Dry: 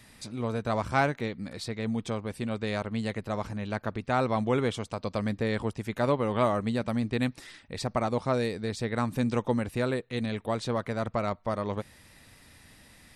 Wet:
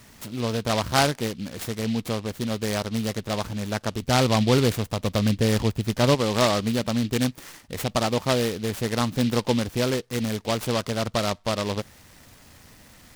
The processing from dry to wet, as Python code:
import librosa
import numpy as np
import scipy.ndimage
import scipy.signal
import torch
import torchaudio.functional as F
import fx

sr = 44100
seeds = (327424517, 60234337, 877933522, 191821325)

y = fx.low_shelf(x, sr, hz=170.0, db=8.5, at=(4.02, 6.15))
y = fx.noise_mod_delay(y, sr, seeds[0], noise_hz=3200.0, depth_ms=0.094)
y = F.gain(torch.from_numpy(y), 4.5).numpy()